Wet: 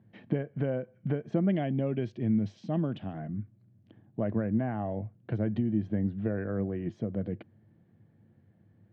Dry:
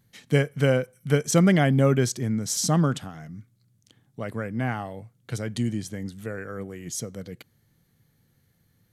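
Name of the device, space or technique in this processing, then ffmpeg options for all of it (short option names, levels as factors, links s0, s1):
bass amplifier: -filter_complex "[0:a]asettb=1/sr,asplit=3[s0][s1][s2];[s0]atrim=end=1.494[s3];[s1]atrim=start=1.49:end=3.13,asetpts=PTS-STARTPTS,afade=t=in:d=0.004:c=qsin,afade=t=out:st=1.636:d=0.004:c=qsin,highshelf=f=2000:t=q:w=1.5:g=8[s4];[s2]atrim=start=3.126[s5];[s3][s4]acrossfade=d=0.004:c1=hsin:c2=qsin[s6];[s6][s5]acrossfade=d=0.004:c1=qsin:c2=hsin,acompressor=threshold=0.0282:ratio=5,highpass=83,equalizer=f=100:t=q:w=4:g=9,equalizer=f=210:t=q:w=4:g=9,equalizer=f=330:t=q:w=4:g=9,equalizer=f=640:t=q:w=4:g=8,equalizer=f=1300:t=q:w=4:g=-7,equalizer=f=2100:t=q:w=4:g=-7,lowpass=f=2300:w=0.5412,lowpass=f=2300:w=1.3066"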